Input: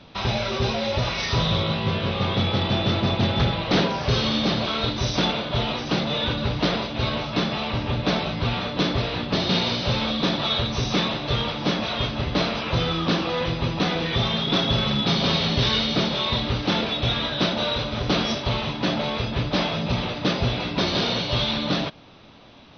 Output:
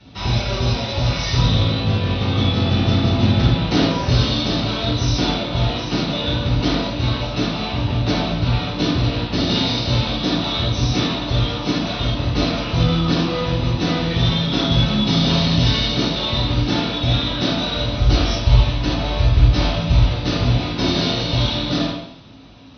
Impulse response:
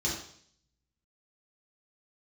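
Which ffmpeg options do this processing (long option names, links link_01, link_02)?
-filter_complex "[0:a]asplit=3[link_01][link_02][link_03];[link_01]afade=type=out:start_time=17.98:duration=0.02[link_04];[link_02]asubboost=boost=5:cutoff=84,afade=type=in:start_time=17.98:duration=0.02,afade=type=out:start_time=20.41:duration=0.02[link_05];[link_03]afade=type=in:start_time=20.41:duration=0.02[link_06];[link_04][link_05][link_06]amix=inputs=3:normalize=0[link_07];[1:a]atrim=start_sample=2205,asetrate=35721,aresample=44100[link_08];[link_07][link_08]afir=irnorm=-1:irlink=0,volume=-7.5dB"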